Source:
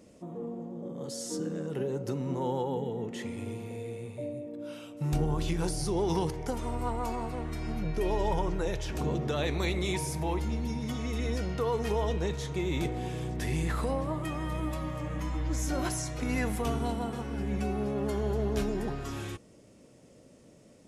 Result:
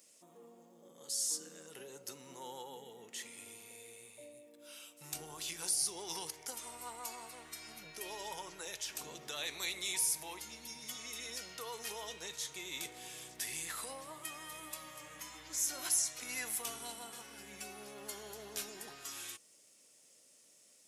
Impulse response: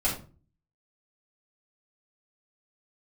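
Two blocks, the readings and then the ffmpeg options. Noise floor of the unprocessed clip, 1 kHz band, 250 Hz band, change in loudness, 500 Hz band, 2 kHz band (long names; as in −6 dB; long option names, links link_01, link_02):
−57 dBFS, −12.0 dB, −23.0 dB, −7.0 dB, −18.0 dB, −5.0 dB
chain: -af "aderivative,volume=5.5dB"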